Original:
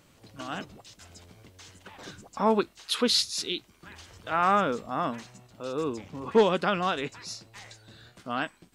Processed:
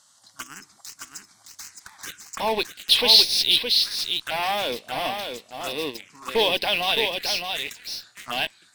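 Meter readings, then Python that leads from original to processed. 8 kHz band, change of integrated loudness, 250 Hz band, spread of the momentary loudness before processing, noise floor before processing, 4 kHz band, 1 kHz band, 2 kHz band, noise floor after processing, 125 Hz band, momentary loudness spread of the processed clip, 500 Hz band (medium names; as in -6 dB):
+5.5 dB, +6.5 dB, -6.0 dB, 21 LU, -61 dBFS, +13.0 dB, -0.5 dB, +7.0 dB, -59 dBFS, -6.5 dB, 22 LU, 0.0 dB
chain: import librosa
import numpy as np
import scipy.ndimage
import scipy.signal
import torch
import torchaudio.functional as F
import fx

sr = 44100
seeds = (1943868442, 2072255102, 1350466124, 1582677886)

p1 = fx.weighting(x, sr, curve='ITU-R 468')
p2 = fx.spec_box(p1, sr, start_s=0.42, length_s=0.23, low_hz=430.0, high_hz=4800.0, gain_db=-11)
p3 = fx.dynamic_eq(p2, sr, hz=760.0, q=1.7, threshold_db=-43.0, ratio=4.0, max_db=5)
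p4 = fx.fuzz(p3, sr, gain_db=34.0, gate_db=-34.0)
p5 = p3 + (p4 * librosa.db_to_amplitude(-8.0))
p6 = fx.env_phaser(p5, sr, low_hz=400.0, high_hz=1300.0, full_db=-23.5)
y = p6 + fx.echo_single(p6, sr, ms=616, db=-6.0, dry=0)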